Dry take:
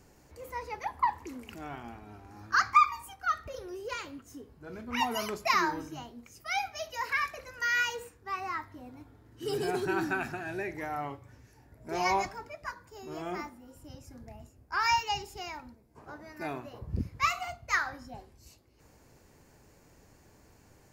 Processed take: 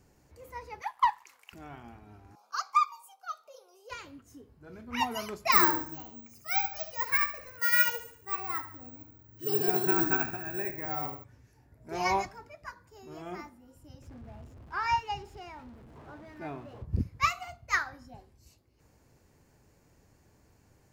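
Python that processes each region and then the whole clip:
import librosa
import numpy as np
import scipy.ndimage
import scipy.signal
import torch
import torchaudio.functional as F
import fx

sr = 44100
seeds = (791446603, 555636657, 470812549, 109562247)

y = fx.chain(x, sr, fx.highpass(hz=820.0, slope=24),
    fx.leveller(passes=1), at=(0.82, 1.53))
y = fx.chain(y, sr, fx.bessel_highpass(hz=500.0, order=8),
    fx.fixed_phaser(hz=750.0, stages=4), at=(2.35, 3.9))
y = fx.chain(y, sr, fx.peak_eq(hz=3100.0, db=-6.0, octaves=0.31),
    fx.echo_feedback(ms=72, feedback_pct=45, wet_db=-8),
    fx.resample_bad(factor=2, down='none', up='zero_stuff'), at=(5.52, 11.24))
y = fx.chain(y, sr, fx.zero_step(step_db=-43.0),
    fx.lowpass(hz=1700.0, slope=6), at=(14.02, 16.85))
y = fx.peak_eq(y, sr, hz=100.0, db=4.0, octaves=2.1)
y = fx.upward_expand(y, sr, threshold_db=-37.0, expansion=1.5)
y = y * 10.0 ** (2.5 / 20.0)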